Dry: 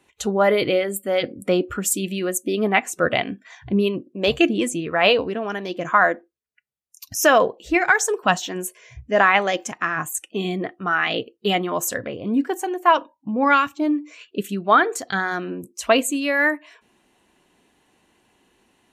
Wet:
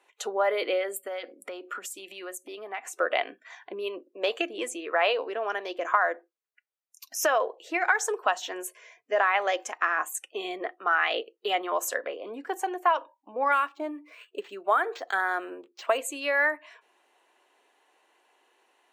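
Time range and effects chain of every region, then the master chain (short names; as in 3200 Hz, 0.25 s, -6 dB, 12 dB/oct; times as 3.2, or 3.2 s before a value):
1.07–2.95 bell 470 Hz -5 dB 0.66 oct + compressor 16:1, threshold -27 dBFS
13.52–15.98 air absorption 74 m + decimation joined by straight lines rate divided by 4×
whole clip: high shelf 2200 Hz -10 dB; compressor, threshold -20 dBFS; Bessel high-pass 640 Hz, order 6; gain +2.5 dB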